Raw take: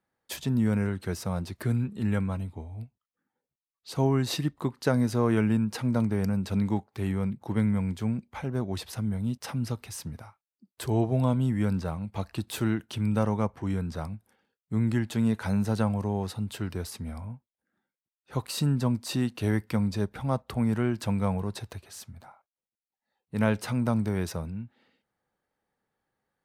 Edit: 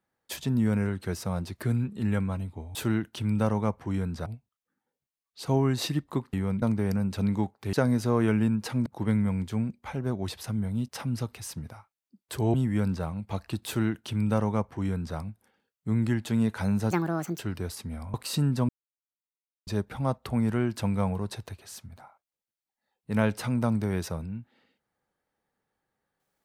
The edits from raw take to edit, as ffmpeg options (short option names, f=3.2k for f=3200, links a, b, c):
-filter_complex "[0:a]asplit=13[a][b][c][d][e][f][g][h][i][j][k][l][m];[a]atrim=end=2.752[n];[b]atrim=start=12.508:end=14.022[o];[c]atrim=start=2.748:end=4.822[p];[d]atrim=start=7.058:end=7.352[q];[e]atrim=start=5.948:end=7.062[r];[f]atrim=start=4.818:end=5.952[s];[g]atrim=start=7.348:end=11.032[t];[h]atrim=start=11.388:end=15.764[u];[i]atrim=start=15.76:end=16.54,asetpts=PTS-STARTPTS,asetrate=71883,aresample=44100,atrim=end_sample=21103,asetpts=PTS-STARTPTS[v];[j]atrim=start=16.536:end=17.292[w];[k]atrim=start=18.378:end=18.93,asetpts=PTS-STARTPTS,afade=t=out:st=0.548:d=0.004:c=hsin[x];[l]atrim=start=18.93:end=19.91,asetpts=PTS-STARTPTS,volume=0[y];[m]atrim=start=19.91,asetpts=PTS-STARTPTS,afade=t=in:d=0.004:c=hsin[z];[n][o]acrossfade=d=0.004:c1=hsin:c2=hsin[aa];[aa][p]acrossfade=d=0.004:c1=hsin:c2=hsin[ab];[ab][q]acrossfade=d=0.004:c1=hsin:c2=hsin[ac];[ac][r]acrossfade=d=0.004:c1=hsin:c2=hsin[ad];[ad][s]acrossfade=d=0.004:c1=hsin:c2=hsin[ae];[ae][t]acrossfade=d=0.004:c1=hsin:c2=hsin[af];[af][u]acrossfade=d=0.004:c1=hsin:c2=hsin[ag];[ag][v]acrossfade=d=0.004:c1=hsin:c2=hsin[ah];[ah][w]acrossfade=d=0.004:c1=hsin:c2=hsin[ai];[x][y][z]concat=n=3:v=0:a=1[aj];[ai][aj]acrossfade=d=0.004:c1=hsin:c2=hsin"